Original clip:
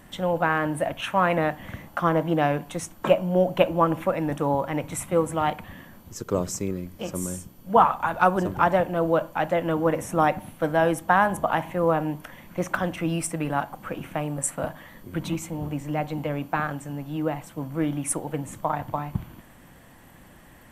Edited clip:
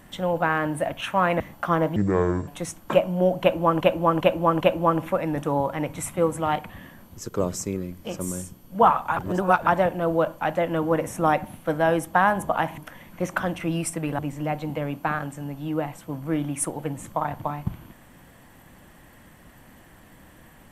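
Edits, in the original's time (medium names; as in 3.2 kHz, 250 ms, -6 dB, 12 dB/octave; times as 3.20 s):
1.40–1.74 s: delete
2.30–2.62 s: speed 62%
3.55–3.95 s: loop, 4 plays
8.11–8.61 s: reverse
11.72–12.15 s: delete
13.56–15.67 s: delete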